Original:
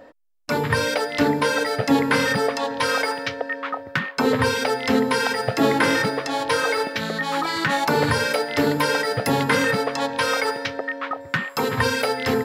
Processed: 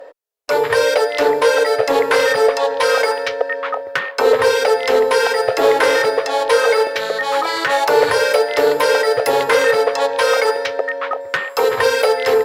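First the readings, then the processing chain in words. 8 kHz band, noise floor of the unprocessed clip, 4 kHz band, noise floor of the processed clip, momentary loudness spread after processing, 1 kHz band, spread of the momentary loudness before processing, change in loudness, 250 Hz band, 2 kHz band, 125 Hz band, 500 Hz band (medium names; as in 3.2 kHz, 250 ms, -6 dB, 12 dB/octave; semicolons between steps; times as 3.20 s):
+4.0 dB, -41 dBFS, +3.5 dB, -32 dBFS, 7 LU, +5.0 dB, 7 LU, +6.0 dB, -9.0 dB, +4.0 dB, under -10 dB, +10.0 dB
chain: one-sided clip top -17.5 dBFS; resonant low shelf 320 Hz -13 dB, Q 3; trim +4 dB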